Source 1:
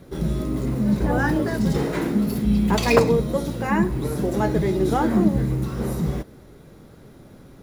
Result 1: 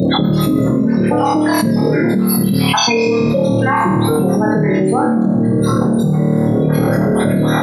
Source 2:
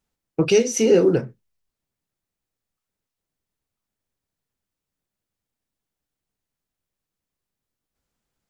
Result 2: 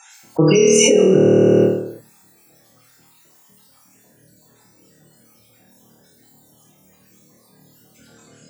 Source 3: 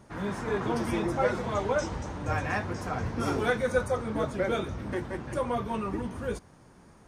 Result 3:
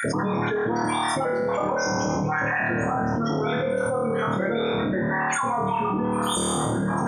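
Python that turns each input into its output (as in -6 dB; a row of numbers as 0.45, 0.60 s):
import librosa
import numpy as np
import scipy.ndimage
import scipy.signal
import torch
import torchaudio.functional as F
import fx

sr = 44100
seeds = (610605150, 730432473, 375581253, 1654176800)

y = fx.spec_dropout(x, sr, seeds[0], share_pct=43)
y = fx.rider(y, sr, range_db=4, speed_s=2.0)
y = fx.spec_topn(y, sr, count=32)
y = scipy.signal.sosfilt(scipy.signal.butter(4, 120.0, 'highpass', fs=sr, output='sos'), y)
y = fx.high_shelf(y, sr, hz=4800.0, db=11.0)
y = fx.notch(y, sr, hz=390.0, q=12.0)
y = fx.room_flutter(y, sr, wall_m=4.5, rt60_s=0.83)
y = fx.env_flatten(y, sr, amount_pct=100)
y = y * 10.0 ** (-3.0 / 20.0)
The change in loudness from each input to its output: +8.0, +5.0, +6.0 LU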